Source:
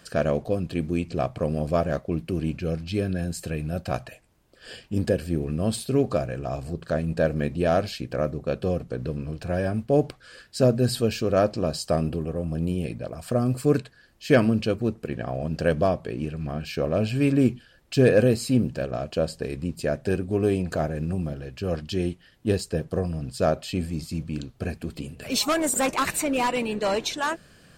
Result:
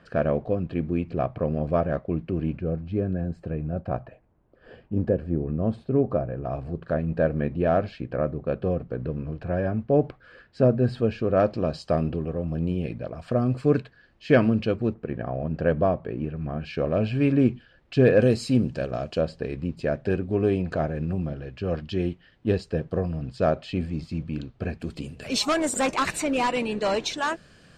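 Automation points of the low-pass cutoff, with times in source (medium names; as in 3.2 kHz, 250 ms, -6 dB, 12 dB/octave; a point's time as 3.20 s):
2 kHz
from 2.59 s 1.1 kHz
from 6.45 s 1.9 kHz
from 11.40 s 3.1 kHz
from 14.94 s 1.8 kHz
from 16.62 s 3 kHz
from 18.22 s 6.2 kHz
from 19.21 s 3.2 kHz
from 24.80 s 7.2 kHz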